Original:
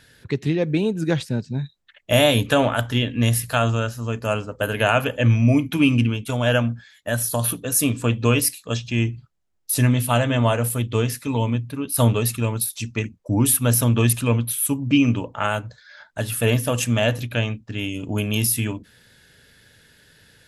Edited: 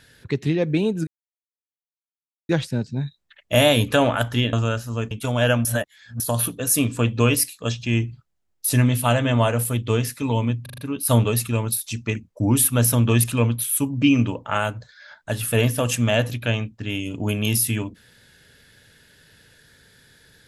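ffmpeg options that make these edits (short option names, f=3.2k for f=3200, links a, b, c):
-filter_complex "[0:a]asplit=10[a][b][c][d][e][f][g][h][i][j];[a]atrim=end=1.07,asetpts=PTS-STARTPTS,afade=t=out:st=1.066:d=0.004:c=hsin,apad=pad_dur=1.42[k];[b]atrim=start=1.07:end=3.112,asetpts=PTS-STARTPTS,afade=t=in:d=0.004:c=hsin[l];[c]atrim=start=3.638:end=4.222[m];[d]atrim=start=6.158:end=6.702[n];[e]atrim=start=6.698:end=7.252,asetpts=PTS-STARTPTS,areverse[o];[f]atrim=start=7.248:end=11.712[p];[g]atrim=start=11.668:end=11.712[q];[h]atrim=start=11.668:end=11.712[r];[i]atrim=start=11.668:end=11.712[s];[j]atrim=start=11.668[t];[k][l]concat=n=2:v=0:a=1[u];[u][m]acrossfade=d=0.004:c1=hsin:c2=hsin[v];[v][n]acrossfade=d=0.004:c1=hsin:c2=hsin[w];[w][o]acrossfade=d=0.004:c1=hsin:c2=hsin[x];[x][p]acrossfade=d=0.004:c1=hsin:c2=hsin[y];[y][q]acrossfade=d=0.004:c1=hsin:c2=hsin[z];[z][r]acrossfade=d=0.004:c1=hsin:c2=hsin[aa];[aa][s]acrossfade=d=0.004:c1=hsin:c2=hsin[ab];[ab][t]acrossfade=d=0.004:c1=hsin:c2=hsin"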